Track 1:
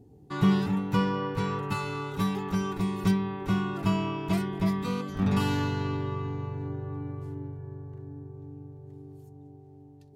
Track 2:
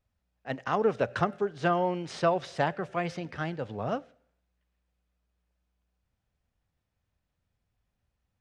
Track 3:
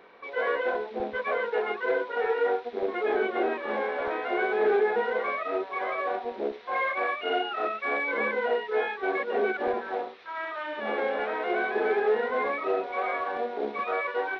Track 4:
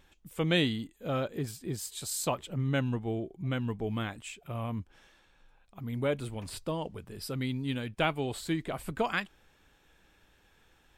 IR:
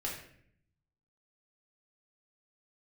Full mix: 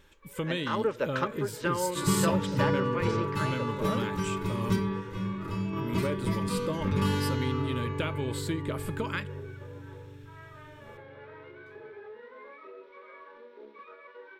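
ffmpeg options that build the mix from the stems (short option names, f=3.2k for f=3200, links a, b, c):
-filter_complex "[0:a]adelay=1650,volume=-3.5dB,asplit=2[a][b];[b]volume=-6dB[c];[1:a]highpass=f=370:p=1,volume=-0.5dB[d];[2:a]equalizer=f=85:t=o:w=0.77:g=-6.5,alimiter=limit=-22.5dB:level=0:latency=1:release=144,volume=-18.5dB,asplit=2[e][f];[f]volume=-9.5dB[g];[3:a]acompressor=threshold=-31dB:ratio=6,volume=2dB,asplit=3[h][i][j];[i]volume=-19dB[k];[j]apad=whole_len=520555[l];[a][l]sidechaingate=range=-33dB:threshold=-55dB:ratio=16:detection=peak[m];[4:a]atrim=start_sample=2205[n];[c][g][k]amix=inputs=3:normalize=0[o];[o][n]afir=irnorm=-1:irlink=0[p];[m][d][e][h][p]amix=inputs=5:normalize=0,asuperstop=centerf=730:order=8:qfactor=4.5"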